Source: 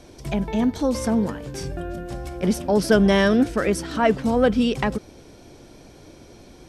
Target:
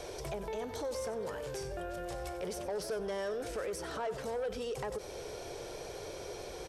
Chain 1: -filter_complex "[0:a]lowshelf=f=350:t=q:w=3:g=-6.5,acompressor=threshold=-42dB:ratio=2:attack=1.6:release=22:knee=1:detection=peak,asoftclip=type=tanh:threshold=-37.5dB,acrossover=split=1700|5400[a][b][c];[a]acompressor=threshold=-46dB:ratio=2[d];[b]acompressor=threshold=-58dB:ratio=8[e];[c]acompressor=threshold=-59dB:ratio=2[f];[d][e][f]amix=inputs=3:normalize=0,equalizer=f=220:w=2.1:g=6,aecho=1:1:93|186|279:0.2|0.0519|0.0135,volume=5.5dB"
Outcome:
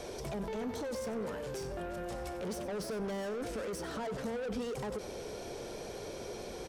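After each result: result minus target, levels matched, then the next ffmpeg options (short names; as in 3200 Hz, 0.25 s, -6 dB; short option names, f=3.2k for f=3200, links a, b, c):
soft clip: distortion +11 dB; 250 Hz band +6.0 dB
-filter_complex "[0:a]lowshelf=f=350:t=q:w=3:g=-6.5,acompressor=threshold=-42dB:ratio=2:attack=1.6:release=22:knee=1:detection=peak,asoftclip=type=tanh:threshold=-27dB,acrossover=split=1700|5400[a][b][c];[a]acompressor=threshold=-46dB:ratio=2[d];[b]acompressor=threshold=-58dB:ratio=8[e];[c]acompressor=threshold=-59dB:ratio=2[f];[d][e][f]amix=inputs=3:normalize=0,equalizer=f=220:w=2.1:g=6,aecho=1:1:93|186|279:0.2|0.0519|0.0135,volume=5.5dB"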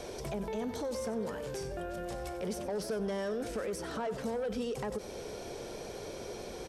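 250 Hz band +5.5 dB
-filter_complex "[0:a]lowshelf=f=350:t=q:w=3:g=-6.5,acompressor=threshold=-42dB:ratio=2:attack=1.6:release=22:knee=1:detection=peak,asoftclip=type=tanh:threshold=-27dB,acrossover=split=1700|5400[a][b][c];[a]acompressor=threshold=-46dB:ratio=2[d];[b]acompressor=threshold=-58dB:ratio=8[e];[c]acompressor=threshold=-59dB:ratio=2[f];[d][e][f]amix=inputs=3:normalize=0,equalizer=f=220:w=2.1:g=-5.5,aecho=1:1:93|186|279:0.2|0.0519|0.0135,volume=5.5dB"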